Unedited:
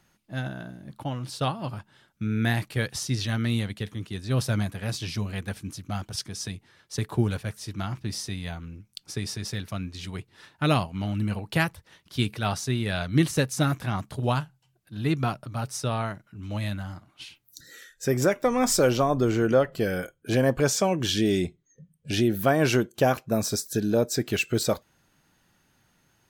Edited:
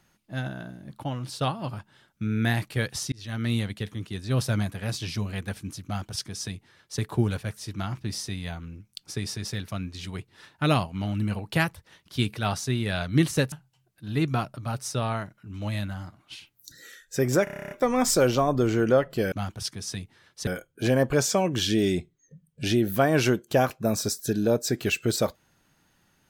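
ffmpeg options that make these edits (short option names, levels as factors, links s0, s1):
-filter_complex "[0:a]asplit=14[s0][s1][s2][s3][s4][s5][s6][s7][s8][s9][s10][s11][s12][s13];[s0]atrim=end=3.12,asetpts=PTS-STARTPTS,afade=t=out:st=3.116:d=0.004:c=hsin[s14];[s1]atrim=start=3.12:end=13.522,asetpts=PTS-STARTPTS,afade=t=in:d=0.39[s15];[s2]atrim=start=14.408:end=18.362[s16];[s3]atrim=start=18.328:end=18.362[s17];[s4]atrim=start=18.328:end=18.362[s18];[s5]atrim=start=18.328:end=18.362[s19];[s6]atrim=start=18.328:end=18.362[s20];[s7]atrim=start=18.328:end=18.362[s21];[s8]atrim=start=18.328:end=18.362[s22];[s9]atrim=start=18.328:end=18.362[s23];[s10]atrim=start=18.328:end=18.362[s24];[s11]atrim=start=18.328:end=19.942[s25];[s12]atrim=start=5.848:end=7.002[s26];[s13]atrim=start=19.938[s27];[s14][s15]concat=n=2:v=0:a=1[s28];[s28][s16]acrossfade=d=0.004:c1=hsin:c2=hsin[s29];[s29][s17]acrossfade=d=0.004:c1=hsin:c2=hsin[s30];[s30][s18]acrossfade=d=0.004:c1=hsin:c2=hsin[s31];[s31][s19]acrossfade=d=0.004:c1=hsin:c2=hsin[s32];[s32][s20]acrossfade=d=0.004:c1=hsin:c2=hsin[s33];[s33][s21]acrossfade=d=0.004:c1=hsin:c2=hsin[s34];[s34][s22]acrossfade=d=0.004:c1=hsin:c2=hsin[s35];[s35][s23]acrossfade=d=0.004:c1=hsin:c2=hsin[s36];[s36][s24]acrossfade=d=0.004:c1=hsin:c2=hsin[s37];[s37][s25]acrossfade=d=0.004:c1=hsin:c2=hsin[s38];[s38][s26]acrossfade=d=0.004:c1=hsin:c2=hsin[s39];[s39][s27]acrossfade=d=0.004:c1=hsin:c2=hsin"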